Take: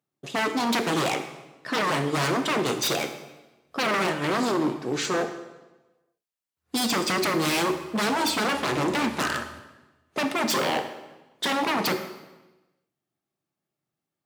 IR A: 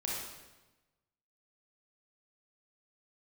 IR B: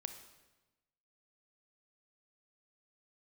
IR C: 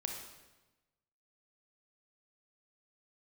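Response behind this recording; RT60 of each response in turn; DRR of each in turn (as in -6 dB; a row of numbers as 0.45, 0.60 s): B; 1.1, 1.1, 1.1 s; -4.5, 8.0, 2.0 dB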